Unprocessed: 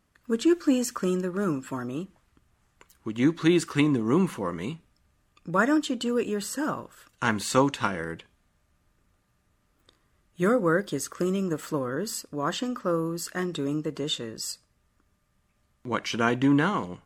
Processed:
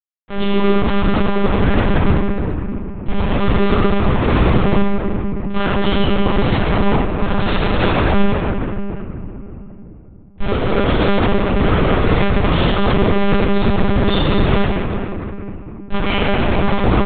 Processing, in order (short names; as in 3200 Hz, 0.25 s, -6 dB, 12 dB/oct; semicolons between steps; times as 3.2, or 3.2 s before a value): tape stop at the end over 0.59 s; transient shaper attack -8 dB, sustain +7 dB; Schmitt trigger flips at -33.5 dBFS; early reflections 23 ms -10.5 dB, 79 ms -8.5 dB; reverb RT60 3.1 s, pre-delay 3 ms, DRR -12 dB; monotone LPC vocoder at 8 kHz 200 Hz; gain +1 dB